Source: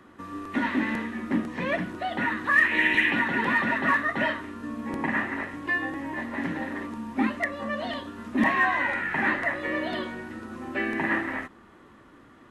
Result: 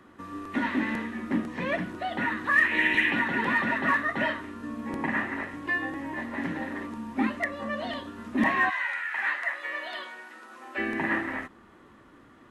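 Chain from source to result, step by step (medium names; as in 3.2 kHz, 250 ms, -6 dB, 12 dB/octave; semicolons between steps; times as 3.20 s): 8.69–10.77 s: high-pass 1.4 kHz -> 620 Hz 12 dB/octave; trim -1.5 dB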